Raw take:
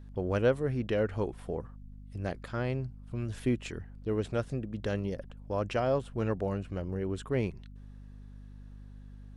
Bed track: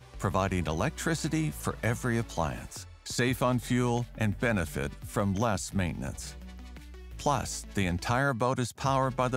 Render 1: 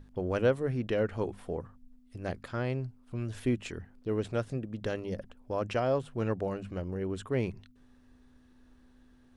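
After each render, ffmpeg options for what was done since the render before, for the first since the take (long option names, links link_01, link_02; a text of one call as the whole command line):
ffmpeg -i in.wav -af "bandreject=frequency=50:width_type=h:width=6,bandreject=frequency=100:width_type=h:width=6,bandreject=frequency=150:width_type=h:width=6,bandreject=frequency=200:width_type=h:width=6" out.wav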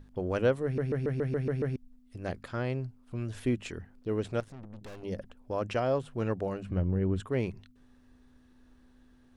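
ffmpeg -i in.wav -filter_complex "[0:a]asettb=1/sr,asplit=3[link_01][link_02][link_03];[link_01]atrim=end=4.404[link_04];[link_02]atrim=start=4.4:end=5.03,asetpts=PTS-STARTPTS,afade=type=in:duration=0.004:curve=qsin,afade=type=out:start_time=0.626:duration=0.004:curve=qsin,aeval=exprs='(tanh(141*val(0)+0.75)-tanh(0.75))/141':channel_layout=same[link_05];[link_03]atrim=start=5.026[link_06];[link_04][link_05]acrossfade=duration=0.004:curve1=hsin:curve2=qsin[link_07];[link_07][link_06]acrossfade=duration=0.004:curve1=qsin:curve2=hsin,asettb=1/sr,asplit=3[link_08][link_09][link_10];[link_08]atrim=end=6.694[link_11];[link_09]atrim=start=6.69:end=7.2,asetpts=PTS-STARTPTS,afade=type=in:duration=0.004:curve=qsin,afade=type=out:start_time=0.506:duration=0.004:curve=qsin,bass=frequency=250:gain=10,treble=frequency=4000:gain=-11[link_12];[link_10]atrim=start=7.196[link_13];[link_11][link_12]acrossfade=duration=0.004:curve1=hsin:curve2=qsin[link_14];[link_14][link_13]acrossfade=duration=0.004:curve1=qsin:curve2=hsin,asplit=9[link_15][link_16][link_17][link_18][link_19][link_20][link_21][link_22][link_23];[link_15]atrim=end=0.782[link_24];[link_16]atrim=start=0.638:end=0.782[link_25];[link_17]atrim=start=0.638:end=0.782[link_26];[link_18]atrim=start=0.638:end=0.782[link_27];[link_19]atrim=start=0.638:end=0.782[link_28];[link_20]atrim=start=0.638:end=0.782[link_29];[link_21]atrim=start=0.638:end=0.782[link_30];[link_22]atrim=start=0.638:end=0.782[link_31];[link_23]atrim=start=1.758[link_32];[link_24][link_25]acrossfade=duration=0.004:curve1=hsin:curve2=hsin[link_33];[link_33][link_26]acrossfade=duration=0.004:curve1=hsin:curve2=hsin[link_34];[link_34][link_27]acrossfade=duration=0.004:curve1=hsin:curve2=hsin[link_35];[link_35][link_28]acrossfade=duration=0.004:curve1=hsin:curve2=hsin[link_36];[link_36][link_29]acrossfade=duration=0.004:curve1=hsin:curve2=hsin[link_37];[link_37][link_30]acrossfade=duration=0.004:curve1=hsin:curve2=hsin[link_38];[link_38][link_31]acrossfade=duration=0.004:curve1=hsin:curve2=hsin[link_39];[link_39][link_32]acrossfade=duration=0.004:curve1=hsin:curve2=hsin" out.wav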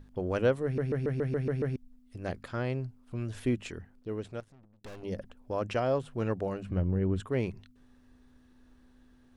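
ffmpeg -i in.wav -filter_complex "[0:a]asplit=2[link_01][link_02];[link_01]atrim=end=4.84,asetpts=PTS-STARTPTS,afade=type=out:start_time=3.55:duration=1.29:silence=0.0668344[link_03];[link_02]atrim=start=4.84,asetpts=PTS-STARTPTS,afade=type=in:duration=0.004:curve=hsin:silence=0.0668344[link_04];[link_03][link_04]concat=n=2:v=0:a=1" out.wav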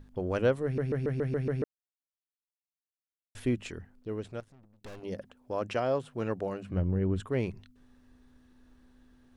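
ffmpeg -i in.wav -filter_complex "[0:a]asettb=1/sr,asplit=3[link_01][link_02][link_03];[link_01]atrim=end=4.994[link_04];[link_02]atrim=start=4.99:end=6.74,asetpts=PTS-STARTPTS,afade=type=in:duration=0.004:curve=qsin,afade=type=out:start_time=1.746:duration=0.004:curve=qsin,highpass=frequency=150:poles=1[link_05];[link_03]atrim=start=6.736[link_06];[link_04][link_05]acrossfade=duration=0.004:curve1=hsin:curve2=qsin[link_07];[link_07][link_06]acrossfade=duration=0.004:curve1=qsin:curve2=hsin,asplit=3[link_08][link_09][link_10];[link_08]atrim=end=1.64,asetpts=PTS-STARTPTS,afade=type=out:start_time=1.636:duration=0.004:curve=hsin[link_11];[link_09]atrim=start=1.64:end=3.35,asetpts=PTS-STARTPTS,volume=0[link_12];[link_10]atrim=start=3.35,asetpts=PTS-STARTPTS,afade=type=in:duration=0.004:curve=hsin[link_13];[link_11][link_12][link_13]concat=n=3:v=0:a=1" out.wav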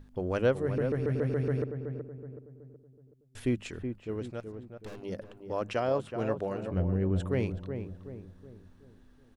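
ffmpeg -i in.wav -filter_complex "[0:a]asplit=2[link_01][link_02];[link_02]adelay=374,lowpass=frequency=1200:poles=1,volume=-7dB,asplit=2[link_03][link_04];[link_04]adelay=374,lowpass=frequency=1200:poles=1,volume=0.46,asplit=2[link_05][link_06];[link_06]adelay=374,lowpass=frequency=1200:poles=1,volume=0.46,asplit=2[link_07][link_08];[link_08]adelay=374,lowpass=frequency=1200:poles=1,volume=0.46,asplit=2[link_09][link_10];[link_10]adelay=374,lowpass=frequency=1200:poles=1,volume=0.46[link_11];[link_01][link_03][link_05][link_07][link_09][link_11]amix=inputs=6:normalize=0" out.wav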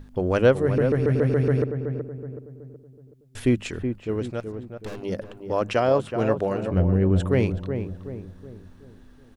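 ffmpeg -i in.wav -af "volume=8.5dB" out.wav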